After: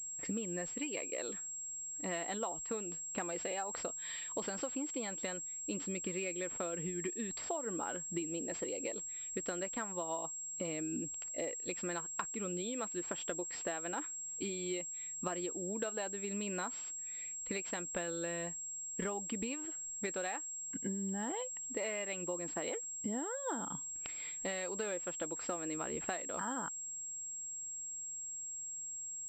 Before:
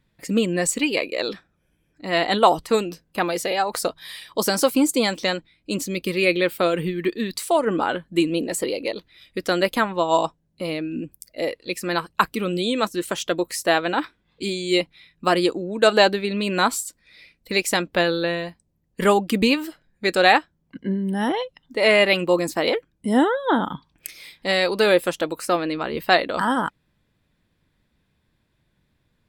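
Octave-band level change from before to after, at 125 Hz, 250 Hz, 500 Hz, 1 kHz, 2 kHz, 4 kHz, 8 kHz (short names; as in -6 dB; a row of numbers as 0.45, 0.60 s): -16.0, -17.5, -19.5, -21.0, -20.5, -23.5, -2.5 dB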